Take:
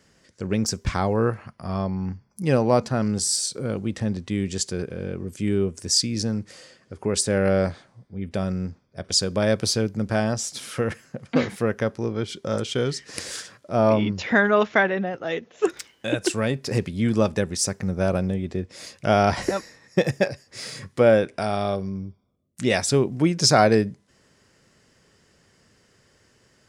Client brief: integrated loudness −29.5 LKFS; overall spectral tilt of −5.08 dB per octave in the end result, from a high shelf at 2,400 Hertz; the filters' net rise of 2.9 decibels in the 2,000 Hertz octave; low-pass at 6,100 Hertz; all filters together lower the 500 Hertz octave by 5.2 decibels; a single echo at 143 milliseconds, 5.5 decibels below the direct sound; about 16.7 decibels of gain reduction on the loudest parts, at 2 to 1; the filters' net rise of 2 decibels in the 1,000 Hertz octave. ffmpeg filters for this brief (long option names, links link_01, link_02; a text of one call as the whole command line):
ffmpeg -i in.wav -af "lowpass=6100,equalizer=frequency=500:width_type=o:gain=-8.5,equalizer=frequency=1000:width_type=o:gain=6.5,equalizer=frequency=2000:width_type=o:gain=4.5,highshelf=frequency=2400:gain=-6,acompressor=threshold=-44dB:ratio=2,aecho=1:1:143:0.531,volume=8.5dB" out.wav